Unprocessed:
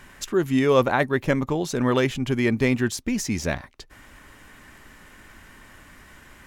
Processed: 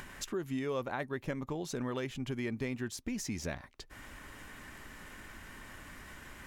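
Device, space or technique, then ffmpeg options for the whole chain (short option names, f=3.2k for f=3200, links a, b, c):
upward and downward compression: -af "acompressor=mode=upward:threshold=-35dB:ratio=2.5,acompressor=threshold=-29dB:ratio=3,volume=-6.5dB"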